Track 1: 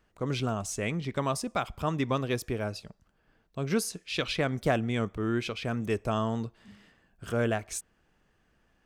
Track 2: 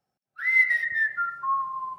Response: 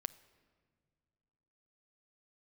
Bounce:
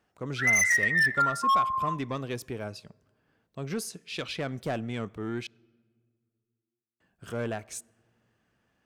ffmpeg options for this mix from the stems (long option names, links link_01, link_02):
-filter_complex "[0:a]highpass=85,asoftclip=type=tanh:threshold=-21dB,volume=-5.5dB,asplit=3[link_01][link_02][link_03];[link_01]atrim=end=5.47,asetpts=PTS-STARTPTS,afade=type=out:start_time=5.466:duration=0.004:curve=hsin[link_04];[link_02]atrim=start=5.47:end=7,asetpts=PTS-STARTPTS,volume=0[link_05];[link_03]atrim=start=7,asetpts=PTS-STARTPTS,afade=type=in:duration=0.004:curve=hsin[link_06];[link_04][link_05][link_06]concat=n=3:v=0:a=1,asplit=2[link_07][link_08];[link_08]volume=-7dB[link_09];[1:a]equalizer=frequency=1100:width=0.4:gain=7.5,aeval=exprs='0.2*(abs(mod(val(0)/0.2+3,4)-2)-1)':channel_layout=same,volume=-7dB,asplit=2[link_10][link_11];[link_11]volume=-5.5dB[link_12];[2:a]atrim=start_sample=2205[link_13];[link_09][link_12]amix=inputs=2:normalize=0[link_14];[link_14][link_13]afir=irnorm=-1:irlink=0[link_15];[link_07][link_10][link_15]amix=inputs=3:normalize=0"